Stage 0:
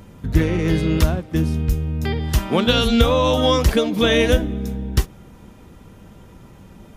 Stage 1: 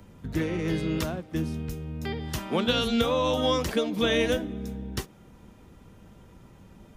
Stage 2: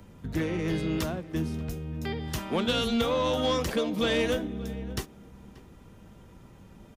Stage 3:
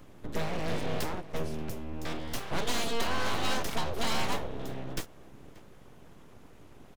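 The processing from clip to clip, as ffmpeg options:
ffmpeg -i in.wav -filter_complex "[0:a]equalizer=frequency=12000:width=2.3:gain=-2.5,acrossover=split=140|450|2900[link_01][link_02][link_03][link_04];[link_01]acompressor=threshold=-30dB:ratio=6[link_05];[link_05][link_02][link_03][link_04]amix=inputs=4:normalize=0,volume=-7.5dB" out.wav
ffmpeg -i in.wav -filter_complex "[0:a]asoftclip=type=tanh:threshold=-19dB,asplit=2[link_01][link_02];[link_02]adelay=583.1,volume=-18dB,highshelf=frequency=4000:gain=-13.1[link_03];[link_01][link_03]amix=inputs=2:normalize=0" out.wav
ffmpeg -i in.wav -af "aeval=exprs='abs(val(0))':channel_layout=same" out.wav

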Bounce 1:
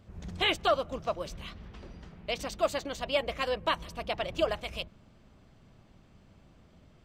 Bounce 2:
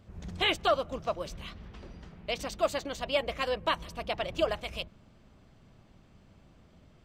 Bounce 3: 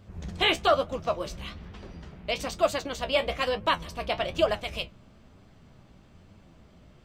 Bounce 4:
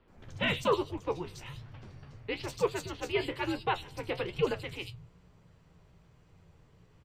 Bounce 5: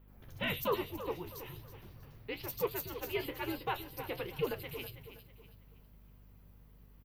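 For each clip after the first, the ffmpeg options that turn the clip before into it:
ffmpeg -i in.wav -af anull out.wav
ffmpeg -i in.wav -af "flanger=delay=9.2:depth=7.6:regen=51:speed=1.1:shape=triangular,volume=8dB" out.wav
ffmpeg -i in.wav -filter_complex "[0:a]acrossover=split=170|3800[link_01][link_02][link_03];[link_03]adelay=80[link_04];[link_01]adelay=170[link_05];[link_05][link_02][link_04]amix=inputs=3:normalize=0,afreqshift=-180,volume=-5dB" out.wav
ffmpeg -i in.wav -af "aexciter=amount=14.3:drive=7.1:freq=11000,aeval=exprs='val(0)+0.00224*(sin(2*PI*50*n/s)+sin(2*PI*2*50*n/s)/2+sin(2*PI*3*50*n/s)/3+sin(2*PI*4*50*n/s)/4+sin(2*PI*5*50*n/s)/5)':channel_layout=same,aecho=1:1:323|646|969|1292:0.251|0.0904|0.0326|0.0117,volume=-5.5dB" out.wav

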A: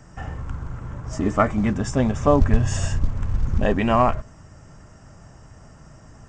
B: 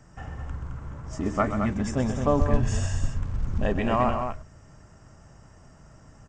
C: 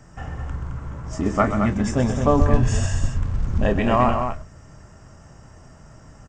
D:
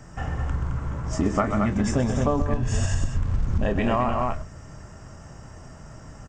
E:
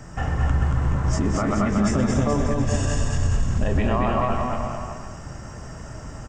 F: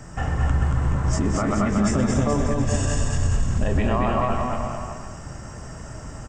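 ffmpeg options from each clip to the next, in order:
ffmpeg -i in.wav -af "aecho=1:1:128.3|215.7:0.316|0.447,volume=-6dB" out.wav
ffmpeg -i in.wav -filter_complex "[0:a]asplit=2[link_01][link_02];[link_02]adelay=25,volume=-11dB[link_03];[link_01][link_03]amix=inputs=2:normalize=0,volume=5dB" out.wav
ffmpeg -i in.wav -af "acompressor=threshold=-21dB:ratio=12,volume=3dB" out.wav
ffmpeg -i in.wav -filter_complex "[0:a]alimiter=limit=-18.5dB:level=0:latency=1:release=111,asplit=2[link_01][link_02];[link_02]aecho=0:1:230|425.5|591.7|732.9|853:0.631|0.398|0.251|0.158|0.1[link_03];[link_01][link_03]amix=inputs=2:normalize=0,volume=4.5dB" out.wav
ffmpeg -i in.wav -af "equalizer=frequency=8000:width=4.2:gain=5.5" out.wav

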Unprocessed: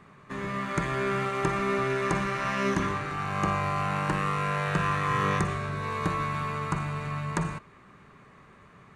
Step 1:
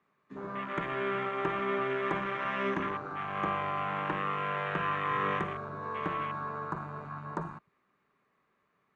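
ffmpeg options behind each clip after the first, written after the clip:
ffmpeg -i in.wav -filter_complex "[0:a]afwtdn=0.0251,acrossover=split=210 7100:gain=0.224 1 0.158[link_01][link_02][link_03];[link_01][link_02][link_03]amix=inputs=3:normalize=0,volume=-3dB" out.wav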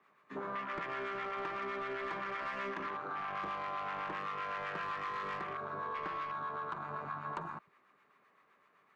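ffmpeg -i in.wav -filter_complex "[0:a]asplit=2[link_01][link_02];[link_02]highpass=frequency=720:poles=1,volume=15dB,asoftclip=type=tanh:threshold=-17dB[link_03];[link_01][link_03]amix=inputs=2:normalize=0,lowpass=frequency=3300:poles=1,volume=-6dB,acrossover=split=830[link_04][link_05];[link_04]aeval=exprs='val(0)*(1-0.5/2+0.5/2*cos(2*PI*7.8*n/s))':channel_layout=same[link_06];[link_05]aeval=exprs='val(0)*(1-0.5/2-0.5/2*cos(2*PI*7.8*n/s))':channel_layout=same[link_07];[link_06][link_07]amix=inputs=2:normalize=0,acompressor=threshold=-38dB:ratio=6,volume=1dB" out.wav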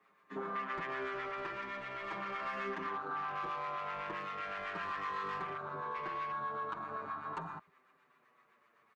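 ffmpeg -i in.wav -filter_complex "[0:a]asplit=2[link_01][link_02];[link_02]adelay=6.9,afreqshift=-0.43[link_03];[link_01][link_03]amix=inputs=2:normalize=1,volume=2.5dB" out.wav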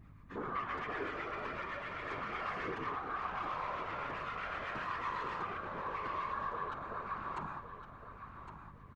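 ffmpeg -i in.wav -af "aeval=exprs='val(0)+0.002*(sin(2*PI*50*n/s)+sin(2*PI*2*50*n/s)/2+sin(2*PI*3*50*n/s)/3+sin(2*PI*4*50*n/s)/4+sin(2*PI*5*50*n/s)/5)':channel_layout=same,afftfilt=real='hypot(re,im)*cos(2*PI*random(0))':imag='hypot(re,im)*sin(2*PI*random(1))':win_size=512:overlap=0.75,aecho=1:1:1111|2222|3333:0.316|0.0854|0.0231,volume=5.5dB" out.wav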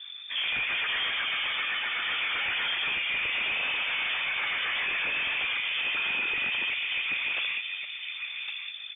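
ffmpeg -i in.wav -af "aeval=exprs='0.0531*sin(PI/2*3.16*val(0)/0.0531)':channel_layout=same,lowpass=frequency=3100:width_type=q:width=0.5098,lowpass=frequency=3100:width_type=q:width=0.6013,lowpass=frequency=3100:width_type=q:width=0.9,lowpass=frequency=3100:width_type=q:width=2.563,afreqshift=-3600" -ar 44100 -c:a nellymoser out.flv

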